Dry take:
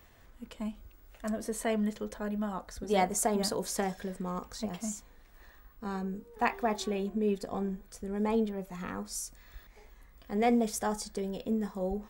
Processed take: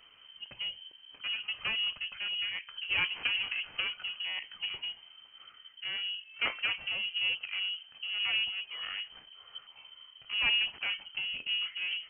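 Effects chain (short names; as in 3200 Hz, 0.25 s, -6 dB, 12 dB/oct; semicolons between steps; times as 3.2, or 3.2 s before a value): one-sided clip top -36 dBFS; inverted band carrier 3100 Hz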